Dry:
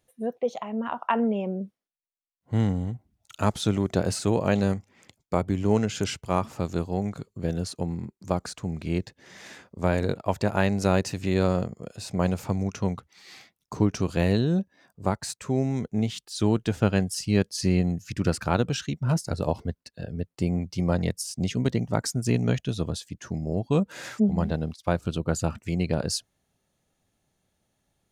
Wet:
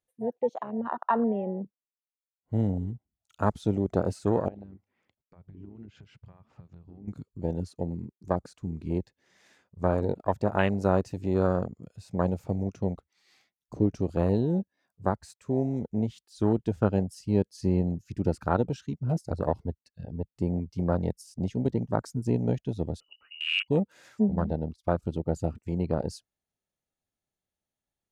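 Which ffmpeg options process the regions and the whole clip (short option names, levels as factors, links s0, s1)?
-filter_complex "[0:a]asettb=1/sr,asplit=3[s0][s1][s2];[s0]atrim=end=4.484[s3];[s1]atrim=start=4.48:end=7.08,asetpts=PTS-STARTPTS,afade=t=in:d=0.004:c=qsin,afade=t=out:st=2.596:d=0.004:c=qsin,lowpass=2900,acompressor=threshold=0.0158:ratio=12:attack=3.2:release=140:knee=1:detection=peak[s4];[s2]atrim=start=7.076[s5];[s3][s4]acrossfade=d=0.004:c1=hsin:c2=qsin[s6];[s6][s5]acrossfade=d=0.004:c1=qsin:c2=hsin,asettb=1/sr,asplit=3[s7][s8][s9];[s7]atrim=end=23.004[s10];[s8]atrim=start=23:end=23.68,asetpts=PTS-STARTPTS,afade=t=in:d=0.004:c=qsin,afade=t=out:st=0.676:d=0.004:c=qsin,aeval=exprs='val(0)+0.00178*(sin(2*PI*50*n/s)+sin(2*PI*2*50*n/s)/2+sin(2*PI*3*50*n/s)/3+sin(2*PI*4*50*n/s)/4+sin(2*PI*5*50*n/s)/5)':c=same,lowpass=f=2600:t=q:w=0.5098,lowpass=f=2600:t=q:w=0.6013,lowpass=f=2600:t=q:w=0.9,lowpass=f=2600:t=q:w=2.563,afreqshift=-3000[s11];[s9]atrim=start=23.676[s12];[s10][s11]acrossfade=d=0.004:c1=hsin:c2=qsin[s13];[s13][s12]acrossfade=d=0.004:c1=qsin:c2=hsin,afwtdn=0.0355,equalizer=f=140:w=0.94:g=-4"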